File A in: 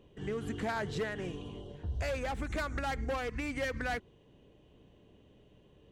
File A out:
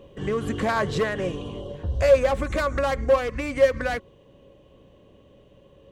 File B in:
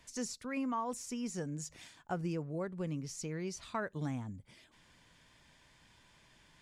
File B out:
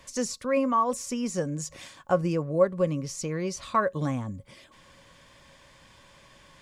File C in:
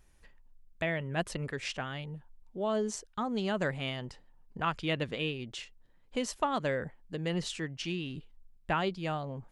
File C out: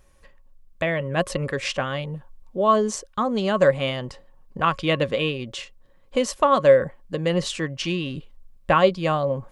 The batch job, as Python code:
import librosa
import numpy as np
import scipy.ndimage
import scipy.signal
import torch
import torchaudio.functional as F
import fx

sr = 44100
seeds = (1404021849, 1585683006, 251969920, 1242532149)

y = fx.rider(x, sr, range_db=5, speed_s=2.0)
y = fx.small_body(y, sr, hz=(550.0, 1100.0), ring_ms=90, db=15)
y = F.gain(torch.from_numpy(y), 8.0).numpy()